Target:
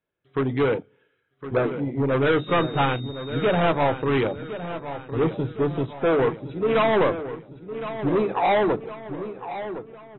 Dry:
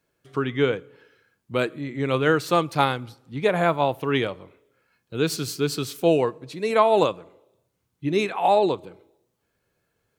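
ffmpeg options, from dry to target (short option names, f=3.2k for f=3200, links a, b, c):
-filter_complex "[0:a]bandreject=f=50:t=h:w=6,bandreject=f=100:t=h:w=6,bandreject=f=150:t=h:w=6,bandreject=f=200:t=h:w=6,bandreject=f=250:t=h:w=6,bandreject=f=300:t=h:w=6,bandreject=f=350:t=h:w=6,afwtdn=0.0447,acontrast=53,asoftclip=type=tanh:threshold=-17dB,asettb=1/sr,asplit=3[a][b][c];[a]atrim=end=2.394[d];[b]atrim=start=2.39:end=3.6,asetpts=PTS-STARTPTS,afade=t=in:d=0.004:c=qsin,afade=t=out:st=1.206:d=0.004:c=qsin,aeval=exprs='val(0)+0.00794*sin(2*PI*3700*n/s)':c=same[e];[c]atrim=start=3.596[f];[d][e]acrossfade=d=0.004:c1=hsin:c2=qsin[g];[g][f]acrossfade=d=0.004:c1=qsin:c2=hsin,asplit=2[h][i];[i]adelay=1061,lowpass=f=4.3k:p=1,volume=-11.5dB,asplit=2[j][k];[k]adelay=1061,lowpass=f=4.3k:p=1,volume=0.47,asplit=2[l][m];[m]adelay=1061,lowpass=f=4.3k:p=1,volume=0.47,asplit=2[n][o];[o]adelay=1061,lowpass=f=4.3k:p=1,volume=0.47,asplit=2[p][q];[q]adelay=1061,lowpass=f=4.3k:p=1,volume=0.47[r];[j][l][n][p][r]amix=inputs=5:normalize=0[s];[h][s]amix=inputs=2:normalize=0,aresample=11025,aresample=44100" -ar 24000 -c:a aac -b:a 16k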